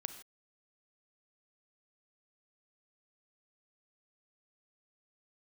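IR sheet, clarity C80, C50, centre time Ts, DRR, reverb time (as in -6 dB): 12.0 dB, 10.0 dB, 11 ms, 9.0 dB, not exponential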